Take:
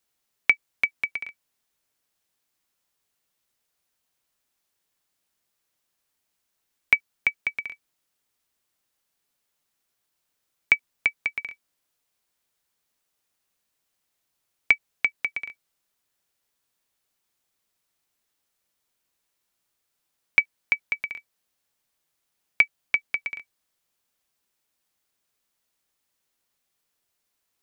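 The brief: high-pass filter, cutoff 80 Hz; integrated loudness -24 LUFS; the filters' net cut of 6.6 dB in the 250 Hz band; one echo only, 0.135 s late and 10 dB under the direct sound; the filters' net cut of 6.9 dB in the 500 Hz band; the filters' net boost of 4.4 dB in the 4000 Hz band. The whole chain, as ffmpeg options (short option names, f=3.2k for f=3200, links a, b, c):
-af "highpass=80,equalizer=f=250:t=o:g=-6.5,equalizer=f=500:t=o:g=-7.5,equalizer=f=4k:t=o:g=6.5,aecho=1:1:135:0.316,volume=-0.5dB"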